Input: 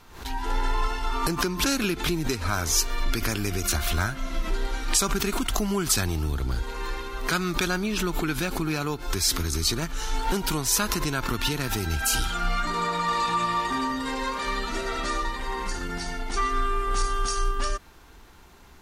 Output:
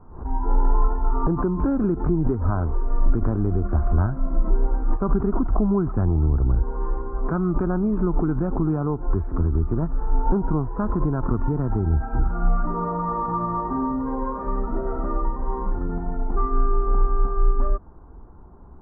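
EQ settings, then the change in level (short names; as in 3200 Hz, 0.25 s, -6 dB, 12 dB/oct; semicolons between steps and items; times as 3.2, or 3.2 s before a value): steep low-pass 1200 Hz 36 dB/oct; low shelf 390 Hz +8.5 dB; 0.0 dB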